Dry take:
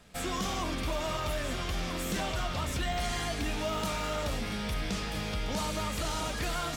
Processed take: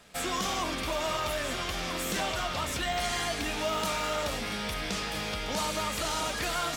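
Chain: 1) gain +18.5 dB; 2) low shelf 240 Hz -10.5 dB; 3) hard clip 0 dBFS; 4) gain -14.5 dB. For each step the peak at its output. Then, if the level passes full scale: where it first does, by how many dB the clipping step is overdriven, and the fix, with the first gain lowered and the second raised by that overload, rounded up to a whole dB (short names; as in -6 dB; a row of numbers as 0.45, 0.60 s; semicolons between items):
-4.5, -5.0, -5.0, -19.5 dBFS; no overload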